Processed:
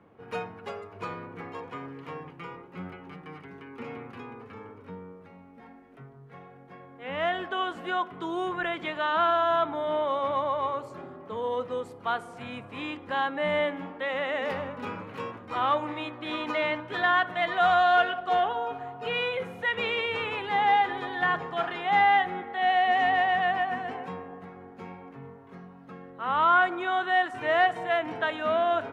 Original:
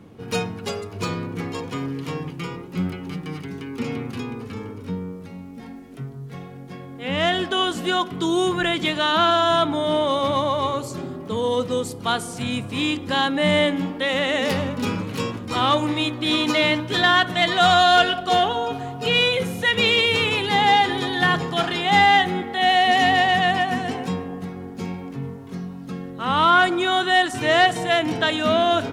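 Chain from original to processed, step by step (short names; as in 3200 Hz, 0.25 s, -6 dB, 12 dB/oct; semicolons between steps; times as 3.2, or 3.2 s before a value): three-band isolator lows -12 dB, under 480 Hz, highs -21 dB, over 2300 Hz; gain -4 dB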